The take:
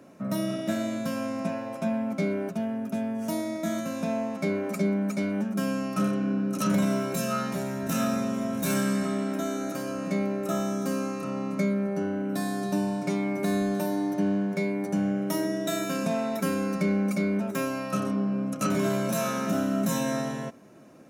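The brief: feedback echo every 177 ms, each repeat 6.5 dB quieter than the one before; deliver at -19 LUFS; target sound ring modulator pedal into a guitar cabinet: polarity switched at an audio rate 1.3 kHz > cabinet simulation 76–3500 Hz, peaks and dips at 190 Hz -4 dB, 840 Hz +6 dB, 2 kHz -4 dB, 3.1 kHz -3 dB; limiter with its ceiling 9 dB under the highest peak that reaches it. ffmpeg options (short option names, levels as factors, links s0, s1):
-af "alimiter=limit=0.0631:level=0:latency=1,aecho=1:1:177|354|531|708|885|1062:0.473|0.222|0.105|0.0491|0.0231|0.0109,aeval=exprs='val(0)*sgn(sin(2*PI*1300*n/s))':c=same,highpass=76,equalizer=f=190:t=q:w=4:g=-4,equalizer=f=840:t=q:w=4:g=6,equalizer=f=2000:t=q:w=4:g=-4,equalizer=f=3100:t=q:w=4:g=-3,lowpass=f=3500:w=0.5412,lowpass=f=3500:w=1.3066,volume=3.55"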